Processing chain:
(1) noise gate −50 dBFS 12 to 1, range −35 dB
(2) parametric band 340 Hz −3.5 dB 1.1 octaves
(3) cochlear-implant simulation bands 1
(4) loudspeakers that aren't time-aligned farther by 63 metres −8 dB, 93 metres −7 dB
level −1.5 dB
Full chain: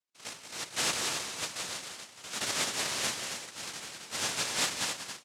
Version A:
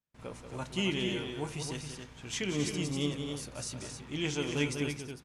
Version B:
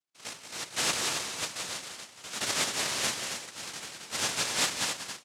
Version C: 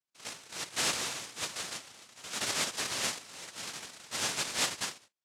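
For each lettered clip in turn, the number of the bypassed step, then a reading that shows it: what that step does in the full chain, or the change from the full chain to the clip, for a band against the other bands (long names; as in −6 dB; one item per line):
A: 3, 125 Hz band +19.0 dB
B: 2, change in integrated loudness +2.0 LU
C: 4, echo-to-direct ratio −4.5 dB to none audible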